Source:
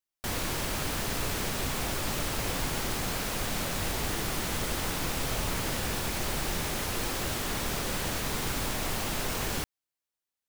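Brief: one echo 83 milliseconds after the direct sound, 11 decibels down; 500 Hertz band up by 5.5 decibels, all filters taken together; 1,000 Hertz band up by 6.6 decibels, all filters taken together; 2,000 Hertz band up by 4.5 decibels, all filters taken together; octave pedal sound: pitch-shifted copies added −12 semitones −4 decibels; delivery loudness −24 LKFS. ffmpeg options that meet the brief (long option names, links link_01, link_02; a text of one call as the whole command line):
ffmpeg -i in.wav -filter_complex "[0:a]equalizer=frequency=500:width_type=o:gain=5,equalizer=frequency=1000:width_type=o:gain=6,equalizer=frequency=2000:width_type=o:gain=3.5,aecho=1:1:83:0.282,asplit=2[link_01][link_02];[link_02]asetrate=22050,aresample=44100,atempo=2,volume=-4dB[link_03];[link_01][link_03]amix=inputs=2:normalize=0,volume=3dB" out.wav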